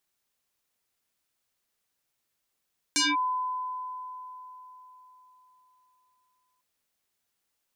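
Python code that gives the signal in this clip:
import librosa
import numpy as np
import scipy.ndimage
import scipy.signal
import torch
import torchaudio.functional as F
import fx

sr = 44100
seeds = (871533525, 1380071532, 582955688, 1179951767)

y = fx.fm2(sr, length_s=3.65, level_db=-20.5, carrier_hz=1010.0, ratio=1.29, index=6.1, index_s=0.2, decay_s=4.05, shape='linear')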